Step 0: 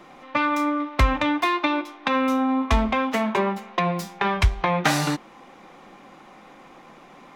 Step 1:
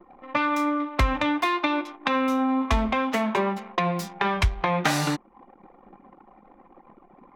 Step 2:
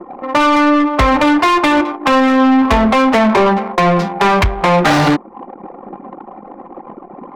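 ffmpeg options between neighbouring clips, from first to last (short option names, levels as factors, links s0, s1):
-af "anlmdn=0.251,acompressor=threshold=0.0158:ratio=1.5,volume=1.68"
-filter_complex "[0:a]adynamicsmooth=sensitivity=7.5:basefreq=1700,tiltshelf=f=770:g=6.5,asplit=2[s0][s1];[s1]highpass=f=720:p=1,volume=22.4,asoftclip=type=tanh:threshold=0.531[s2];[s0][s2]amix=inputs=2:normalize=0,lowpass=f=4200:p=1,volume=0.501,volume=1.33"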